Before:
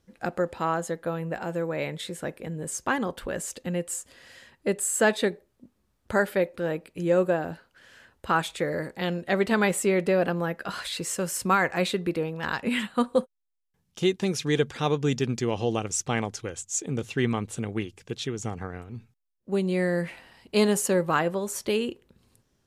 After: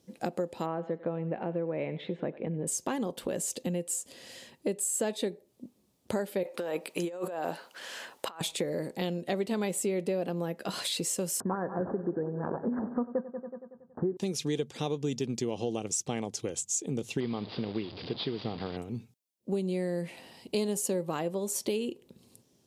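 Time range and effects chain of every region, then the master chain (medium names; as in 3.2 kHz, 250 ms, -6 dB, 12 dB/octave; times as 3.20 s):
0.66–2.67 s: low-pass 2.5 kHz 24 dB/octave + thinning echo 95 ms, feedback 32%, high-pass 580 Hz, level -16.5 dB
6.43–8.41 s: high-pass 760 Hz 6 dB/octave + peaking EQ 1.1 kHz +8.5 dB 1.8 oct + compressor with a negative ratio -35 dBFS
11.40–14.17 s: decimation with a swept rate 12×, swing 160% 2.9 Hz + steep low-pass 1.7 kHz 96 dB/octave + multi-head delay 93 ms, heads first and second, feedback 45%, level -17 dB
17.20–18.77 s: one-bit delta coder 32 kbps, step -34.5 dBFS + rippled Chebyshev low-pass 4.9 kHz, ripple 3 dB
whole clip: high-pass 160 Hz 12 dB/octave; peaking EQ 1.5 kHz -13.5 dB 1.3 oct; compression 4:1, threshold -37 dBFS; trim +7 dB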